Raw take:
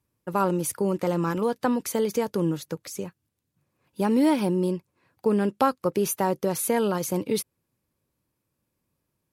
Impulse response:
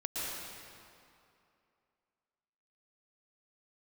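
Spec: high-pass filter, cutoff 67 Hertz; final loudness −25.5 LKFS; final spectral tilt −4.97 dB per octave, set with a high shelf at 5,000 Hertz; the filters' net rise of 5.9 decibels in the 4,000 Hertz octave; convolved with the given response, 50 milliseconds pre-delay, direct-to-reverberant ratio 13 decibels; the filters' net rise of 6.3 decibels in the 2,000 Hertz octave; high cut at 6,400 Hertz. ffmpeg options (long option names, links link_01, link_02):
-filter_complex "[0:a]highpass=67,lowpass=6400,equalizer=frequency=2000:width_type=o:gain=6.5,equalizer=frequency=4000:width_type=o:gain=3.5,highshelf=frequency=5000:gain=6,asplit=2[link_01][link_02];[1:a]atrim=start_sample=2205,adelay=50[link_03];[link_02][link_03]afir=irnorm=-1:irlink=0,volume=-17.5dB[link_04];[link_01][link_04]amix=inputs=2:normalize=0,volume=-0.5dB"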